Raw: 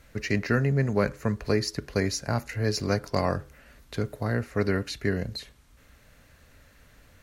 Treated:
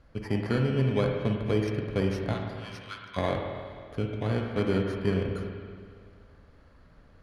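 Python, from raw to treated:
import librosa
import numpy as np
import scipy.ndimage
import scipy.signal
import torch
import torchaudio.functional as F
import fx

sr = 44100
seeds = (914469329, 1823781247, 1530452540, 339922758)

y = fx.bit_reversed(x, sr, seeds[0], block=16)
y = scipy.signal.sosfilt(scipy.signal.butter(2, 2900.0, 'lowpass', fs=sr, output='sos'), y)
y = fx.rider(y, sr, range_db=10, speed_s=2.0)
y = fx.cheby_ripple_highpass(y, sr, hz=970.0, ripple_db=6, at=(2.33, 3.16), fade=0.02)
y = fx.rev_spring(y, sr, rt60_s=2.0, pass_ms=(47, 53), chirp_ms=30, drr_db=2.0)
y = F.gain(torch.from_numpy(y), -2.0).numpy()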